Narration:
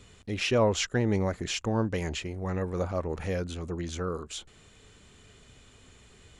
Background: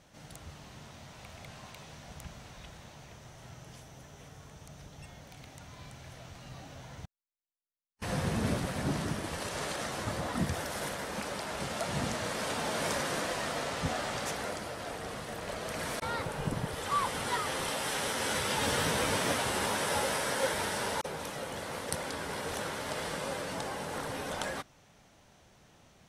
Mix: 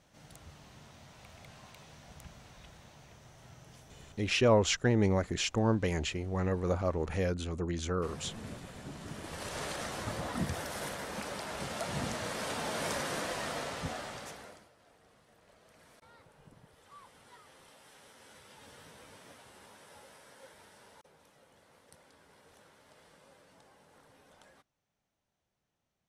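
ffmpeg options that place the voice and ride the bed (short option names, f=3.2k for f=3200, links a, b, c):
-filter_complex "[0:a]adelay=3900,volume=-0.5dB[a];[1:a]volume=6dB,afade=t=out:st=4.03:d=0.47:silence=0.375837,afade=t=in:st=8.98:d=0.57:silence=0.281838,afade=t=out:st=13.54:d=1.16:silence=0.0794328[b];[a][b]amix=inputs=2:normalize=0"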